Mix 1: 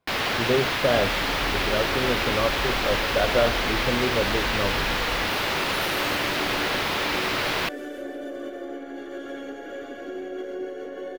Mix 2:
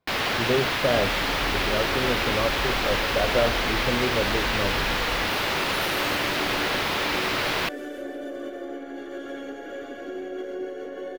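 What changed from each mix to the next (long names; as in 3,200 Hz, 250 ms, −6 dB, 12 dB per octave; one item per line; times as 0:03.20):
speech: add high-frequency loss of the air 460 metres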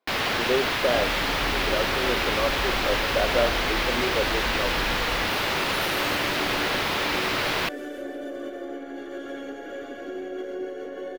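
speech: add high-pass filter 270 Hz 24 dB per octave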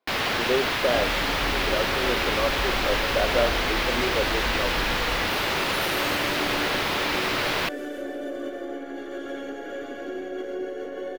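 second sound: send +10.5 dB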